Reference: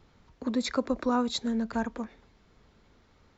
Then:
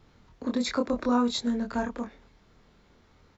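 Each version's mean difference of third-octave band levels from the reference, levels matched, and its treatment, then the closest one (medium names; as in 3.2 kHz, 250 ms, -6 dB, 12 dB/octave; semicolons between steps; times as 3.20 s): 1.5 dB: doubling 25 ms -3.5 dB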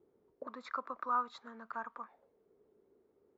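6.5 dB: auto-wah 380–1200 Hz, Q 5.4, up, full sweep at -30.5 dBFS; trim +3.5 dB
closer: first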